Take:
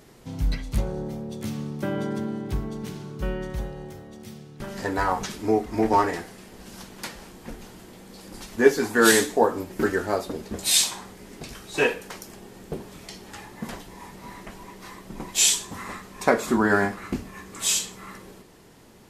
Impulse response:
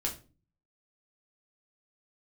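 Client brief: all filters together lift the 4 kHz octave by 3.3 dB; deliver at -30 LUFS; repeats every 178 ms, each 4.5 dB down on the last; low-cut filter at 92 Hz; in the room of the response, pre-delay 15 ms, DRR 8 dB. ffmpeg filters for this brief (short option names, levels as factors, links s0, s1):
-filter_complex "[0:a]highpass=92,equalizer=f=4000:t=o:g=4,aecho=1:1:178|356|534|712|890|1068|1246|1424|1602:0.596|0.357|0.214|0.129|0.0772|0.0463|0.0278|0.0167|0.01,asplit=2[s0][s1];[1:a]atrim=start_sample=2205,adelay=15[s2];[s1][s2]afir=irnorm=-1:irlink=0,volume=0.266[s3];[s0][s3]amix=inputs=2:normalize=0,volume=0.376"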